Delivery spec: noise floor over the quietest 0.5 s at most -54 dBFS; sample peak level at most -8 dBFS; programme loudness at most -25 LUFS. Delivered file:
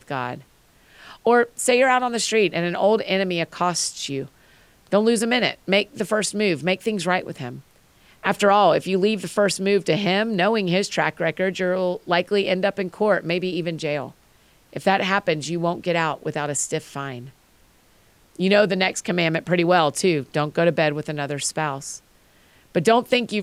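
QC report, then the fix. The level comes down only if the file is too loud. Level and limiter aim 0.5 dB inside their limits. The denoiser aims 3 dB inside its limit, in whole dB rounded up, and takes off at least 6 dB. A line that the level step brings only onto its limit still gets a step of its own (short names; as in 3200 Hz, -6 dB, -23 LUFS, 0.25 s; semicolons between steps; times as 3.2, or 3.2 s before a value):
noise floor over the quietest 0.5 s -56 dBFS: OK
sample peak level -5.5 dBFS: fail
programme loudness -21.5 LUFS: fail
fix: gain -4 dB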